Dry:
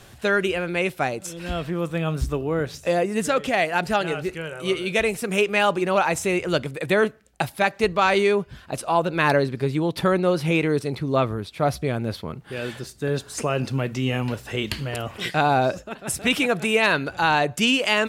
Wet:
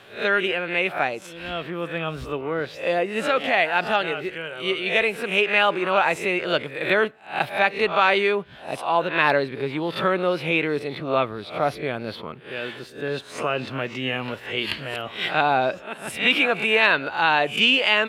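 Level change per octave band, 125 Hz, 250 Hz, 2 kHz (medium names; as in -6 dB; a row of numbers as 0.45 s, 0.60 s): -8.5 dB, -4.5 dB, +3.0 dB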